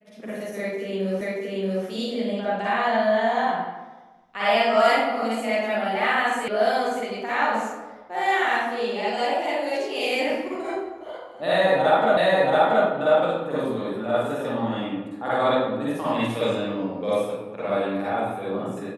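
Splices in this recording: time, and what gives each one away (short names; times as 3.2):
1.21 repeat of the last 0.63 s
6.48 sound cut off
12.17 repeat of the last 0.68 s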